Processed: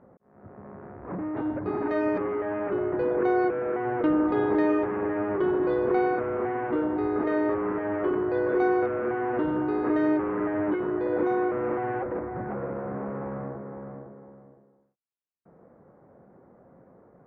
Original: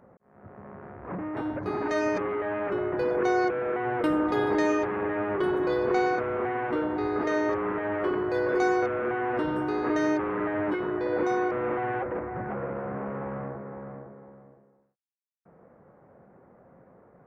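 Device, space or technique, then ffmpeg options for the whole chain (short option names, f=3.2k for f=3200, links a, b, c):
phone in a pocket: -af "lowpass=3.4k,lowpass=f=5.3k:w=0.5412,lowpass=f=5.3k:w=1.3066,equalizer=f=300:t=o:w=0.88:g=3,highshelf=f=2.3k:g=-9"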